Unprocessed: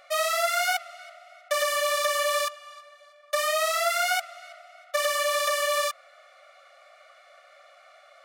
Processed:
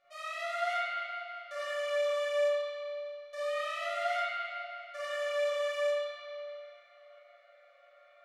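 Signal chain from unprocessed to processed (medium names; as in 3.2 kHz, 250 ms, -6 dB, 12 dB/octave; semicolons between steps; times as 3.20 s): distance through air 60 m; chord resonator A#2 minor, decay 0.68 s; spring tank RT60 2.5 s, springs 41/48 ms, chirp 60 ms, DRR -9.5 dB; trim +1 dB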